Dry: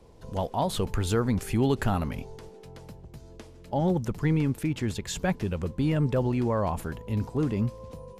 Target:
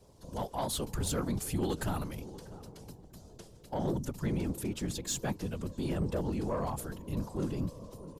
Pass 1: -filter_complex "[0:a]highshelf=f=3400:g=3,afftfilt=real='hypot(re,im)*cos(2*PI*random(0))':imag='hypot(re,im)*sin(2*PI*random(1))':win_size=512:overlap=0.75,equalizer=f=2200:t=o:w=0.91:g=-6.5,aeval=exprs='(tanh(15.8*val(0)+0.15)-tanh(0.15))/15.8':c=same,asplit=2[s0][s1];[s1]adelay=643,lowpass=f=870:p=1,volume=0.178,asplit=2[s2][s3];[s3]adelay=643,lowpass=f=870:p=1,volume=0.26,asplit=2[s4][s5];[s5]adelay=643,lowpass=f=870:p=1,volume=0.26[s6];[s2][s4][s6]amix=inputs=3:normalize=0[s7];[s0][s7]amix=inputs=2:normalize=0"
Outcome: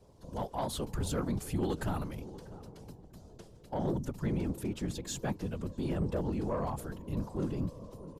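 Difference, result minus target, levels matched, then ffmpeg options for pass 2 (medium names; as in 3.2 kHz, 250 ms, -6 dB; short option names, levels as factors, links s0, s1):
8 kHz band -5.5 dB
-filter_complex "[0:a]highshelf=f=3400:g=10.5,afftfilt=real='hypot(re,im)*cos(2*PI*random(0))':imag='hypot(re,im)*sin(2*PI*random(1))':win_size=512:overlap=0.75,equalizer=f=2200:t=o:w=0.91:g=-6.5,aeval=exprs='(tanh(15.8*val(0)+0.15)-tanh(0.15))/15.8':c=same,asplit=2[s0][s1];[s1]adelay=643,lowpass=f=870:p=1,volume=0.178,asplit=2[s2][s3];[s3]adelay=643,lowpass=f=870:p=1,volume=0.26,asplit=2[s4][s5];[s5]adelay=643,lowpass=f=870:p=1,volume=0.26[s6];[s2][s4][s6]amix=inputs=3:normalize=0[s7];[s0][s7]amix=inputs=2:normalize=0"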